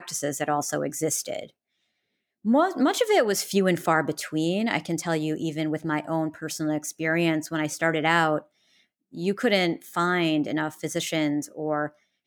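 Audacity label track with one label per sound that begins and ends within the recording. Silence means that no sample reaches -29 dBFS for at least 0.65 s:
2.460000	8.390000	sound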